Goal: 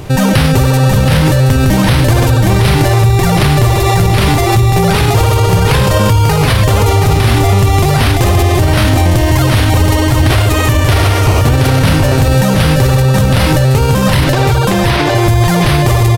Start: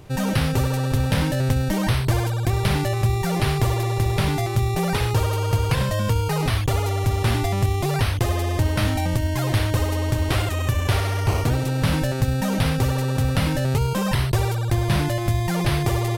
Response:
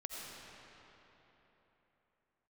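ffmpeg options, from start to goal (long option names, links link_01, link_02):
-filter_complex "[0:a]asettb=1/sr,asplit=3[link_01][link_02][link_03];[link_01]atrim=end=14.244[link_04];[link_02]atrim=start=14.24:end=15.15,asetpts=PTS-STARTPTS,afade=type=in:duration=0.004:curve=qsin,afade=type=out:start_time=0.906:duration=0.004:curve=qsin,acrossover=split=270 5900:gain=0.2 1 0.224[link_05][link_06][link_07];[link_05][link_06][link_07]amix=inputs=3:normalize=0[link_08];[link_03]atrim=start=15.146[link_09];[link_04][link_08]acrossfade=duration=0.004:curve1=hsin:curve2=qsin[link_10];[link_10][link_09]acrossfade=duration=0.004:curve1=qsin:curve2=hsin,aecho=1:1:724:0.596,alimiter=level_in=18.5dB:limit=-1dB:release=50:level=0:latency=1,volume=-1dB"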